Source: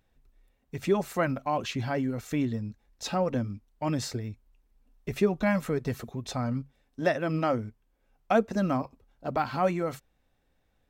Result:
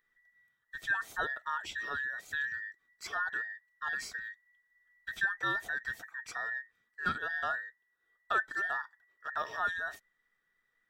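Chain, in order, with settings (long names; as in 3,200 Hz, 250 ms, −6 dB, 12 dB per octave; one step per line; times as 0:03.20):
frequency inversion band by band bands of 2,000 Hz
level −7.5 dB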